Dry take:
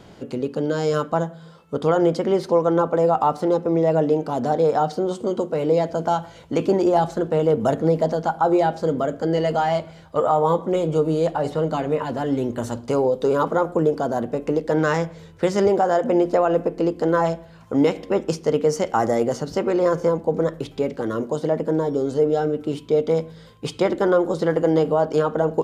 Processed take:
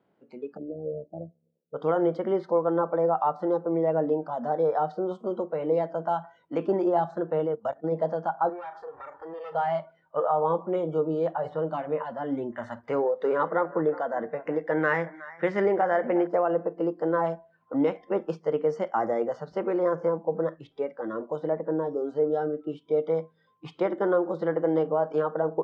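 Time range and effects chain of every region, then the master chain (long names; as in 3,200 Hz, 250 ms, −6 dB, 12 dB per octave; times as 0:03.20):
0:00.57–0:01.74: mains-hum notches 60/120/180 Hz + amplitude modulation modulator 69 Hz, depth 65% + inverse Chebyshev low-pass filter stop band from 1,100 Hz
0:07.46–0:07.92: high-shelf EQ 3,500 Hz +4 dB + output level in coarse steps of 20 dB
0:08.49–0:09.55: lower of the sound and its delayed copy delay 2.2 ms + double-tracking delay 36 ms −11.5 dB + downward compressor 10 to 1, threshold −27 dBFS
0:12.52–0:16.27: parametric band 1,900 Hz +12 dB 0.6 octaves + single-tap delay 364 ms −16.5 dB
whole clip: high-pass filter 190 Hz 12 dB per octave; noise reduction from a noise print of the clip's start 17 dB; low-pass filter 2,000 Hz 12 dB per octave; level −5.5 dB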